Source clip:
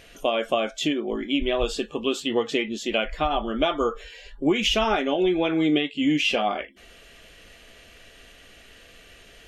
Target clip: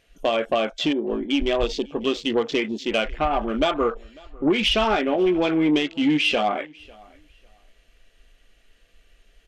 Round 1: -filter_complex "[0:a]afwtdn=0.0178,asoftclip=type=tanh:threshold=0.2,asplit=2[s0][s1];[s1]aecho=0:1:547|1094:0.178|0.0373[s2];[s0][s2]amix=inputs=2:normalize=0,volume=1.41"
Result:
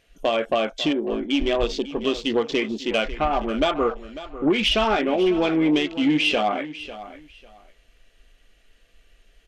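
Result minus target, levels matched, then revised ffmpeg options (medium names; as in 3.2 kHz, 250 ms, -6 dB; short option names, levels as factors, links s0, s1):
echo-to-direct +10.5 dB
-filter_complex "[0:a]afwtdn=0.0178,asoftclip=type=tanh:threshold=0.2,asplit=2[s0][s1];[s1]aecho=0:1:547|1094:0.0531|0.0111[s2];[s0][s2]amix=inputs=2:normalize=0,volume=1.41"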